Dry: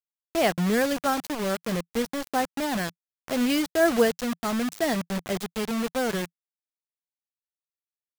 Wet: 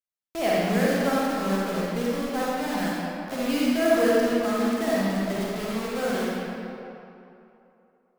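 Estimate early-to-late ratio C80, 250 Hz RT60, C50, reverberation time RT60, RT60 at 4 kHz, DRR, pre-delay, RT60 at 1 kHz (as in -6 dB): -2.5 dB, 2.6 s, -5.5 dB, 2.9 s, 1.7 s, -7.0 dB, 38 ms, 3.0 s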